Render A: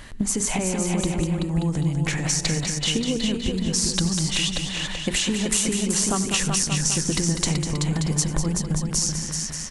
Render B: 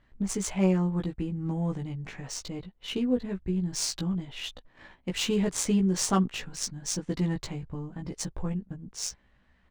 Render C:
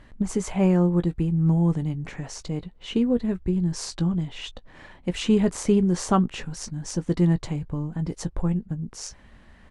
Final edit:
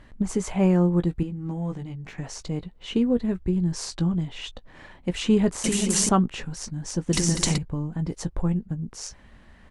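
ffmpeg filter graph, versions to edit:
-filter_complex "[0:a]asplit=2[a][b];[2:a]asplit=4[c][d][e][f];[c]atrim=end=1.232[g];[1:a]atrim=start=1.228:end=2.182[h];[d]atrim=start=2.178:end=5.642[i];[a]atrim=start=5.638:end=6.092[j];[e]atrim=start=6.088:end=7.132[k];[b]atrim=start=7.128:end=7.582[l];[f]atrim=start=7.578[m];[g][h]acrossfade=d=0.004:c1=hsin:c2=hsin[n];[n][i]acrossfade=d=0.004:c1=hsin:c2=hsin[o];[o][j]acrossfade=d=0.004:c1=hsin:c2=hsin[p];[p][k]acrossfade=d=0.004:c1=hsin:c2=hsin[q];[q][l]acrossfade=d=0.004:c1=hsin:c2=hsin[r];[r][m]acrossfade=d=0.004:c1=hsin:c2=hsin"

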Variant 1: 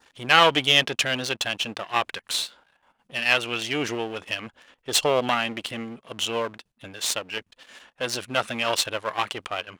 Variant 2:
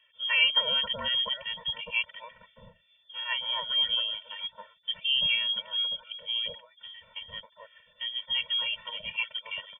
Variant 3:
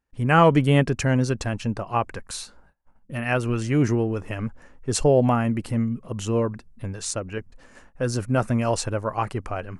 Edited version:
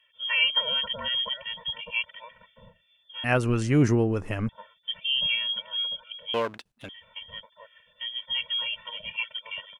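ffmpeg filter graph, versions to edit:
-filter_complex "[1:a]asplit=3[a][b][c];[a]atrim=end=3.242[d];[2:a]atrim=start=3.238:end=4.492[e];[b]atrim=start=4.488:end=6.342[f];[0:a]atrim=start=6.338:end=6.892[g];[c]atrim=start=6.888[h];[d][e]acrossfade=d=0.004:c1=hsin:c2=hsin[i];[i][f]acrossfade=d=0.004:c1=hsin:c2=hsin[j];[j][g]acrossfade=d=0.004:c1=hsin:c2=hsin[k];[k][h]acrossfade=d=0.004:c1=hsin:c2=hsin"

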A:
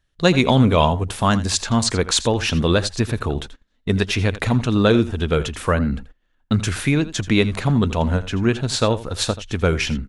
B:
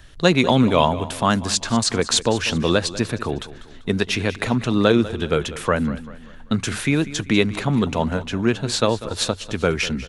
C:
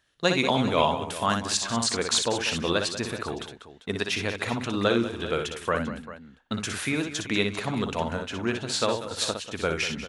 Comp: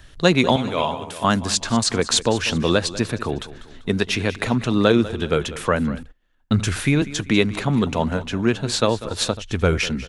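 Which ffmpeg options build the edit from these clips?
-filter_complex "[0:a]asplit=2[a][b];[1:a]asplit=4[c][d][e][f];[c]atrim=end=0.562[g];[2:a]atrim=start=0.558:end=1.242[h];[d]atrim=start=1.238:end=6.032[i];[a]atrim=start=6.028:end=7.022[j];[e]atrim=start=7.018:end=9.372[k];[b]atrim=start=9.368:end=9.782[l];[f]atrim=start=9.778[m];[g][h]acrossfade=d=0.004:c1=hsin:c2=hsin[n];[n][i]acrossfade=d=0.004:c1=hsin:c2=hsin[o];[o][j]acrossfade=d=0.004:c1=hsin:c2=hsin[p];[p][k]acrossfade=d=0.004:c1=hsin:c2=hsin[q];[q][l]acrossfade=d=0.004:c1=hsin:c2=hsin[r];[r][m]acrossfade=d=0.004:c1=hsin:c2=hsin"

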